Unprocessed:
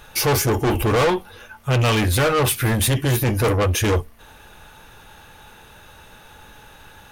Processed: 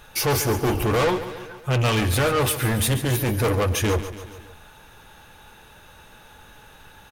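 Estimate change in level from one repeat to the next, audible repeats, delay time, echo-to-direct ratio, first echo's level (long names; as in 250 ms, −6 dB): −4.5 dB, 4, 141 ms, −11.0 dB, −12.5 dB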